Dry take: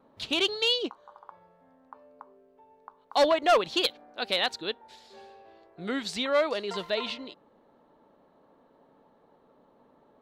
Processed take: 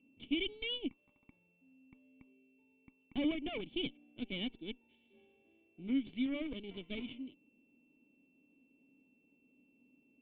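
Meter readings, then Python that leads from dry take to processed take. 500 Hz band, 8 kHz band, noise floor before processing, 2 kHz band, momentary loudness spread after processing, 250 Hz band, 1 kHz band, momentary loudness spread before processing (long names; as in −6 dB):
−18.5 dB, below −35 dB, −63 dBFS, −13.0 dB, 12 LU, −0.5 dB, −27.0 dB, 14 LU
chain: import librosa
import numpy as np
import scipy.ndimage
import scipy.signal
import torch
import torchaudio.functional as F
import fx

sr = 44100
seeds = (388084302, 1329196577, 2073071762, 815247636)

y = x + 10.0 ** (-54.0 / 20.0) * np.sin(2.0 * np.pi * 2700.0 * np.arange(len(x)) / sr)
y = fx.cheby_harmonics(y, sr, harmonics=(6, 7), levels_db=(-13, -28), full_scale_db=-13.5)
y = fx.formant_cascade(y, sr, vowel='i')
y = y * librosa.db_to_amplitude(2.0)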